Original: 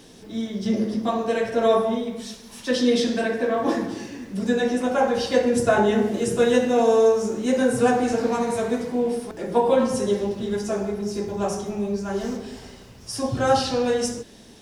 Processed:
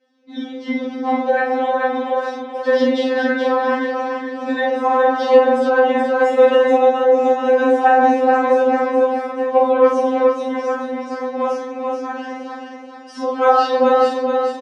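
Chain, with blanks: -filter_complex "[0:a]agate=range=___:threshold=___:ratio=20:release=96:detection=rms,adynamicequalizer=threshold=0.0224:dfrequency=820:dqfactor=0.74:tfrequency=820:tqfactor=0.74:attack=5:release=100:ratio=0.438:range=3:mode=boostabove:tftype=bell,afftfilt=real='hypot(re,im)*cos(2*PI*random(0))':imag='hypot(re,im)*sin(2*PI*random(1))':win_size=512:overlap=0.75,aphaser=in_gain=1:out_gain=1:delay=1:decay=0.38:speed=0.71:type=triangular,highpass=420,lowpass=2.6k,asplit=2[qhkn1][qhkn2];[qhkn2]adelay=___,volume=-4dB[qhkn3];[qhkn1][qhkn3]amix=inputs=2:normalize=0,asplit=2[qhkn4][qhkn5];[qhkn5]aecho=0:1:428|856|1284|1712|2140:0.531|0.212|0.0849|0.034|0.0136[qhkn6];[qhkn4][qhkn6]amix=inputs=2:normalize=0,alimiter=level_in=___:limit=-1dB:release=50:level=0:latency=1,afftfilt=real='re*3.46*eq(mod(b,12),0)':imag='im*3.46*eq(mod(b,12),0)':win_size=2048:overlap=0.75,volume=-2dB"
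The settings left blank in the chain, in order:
-17dB, -39dB, 45, 13.5dB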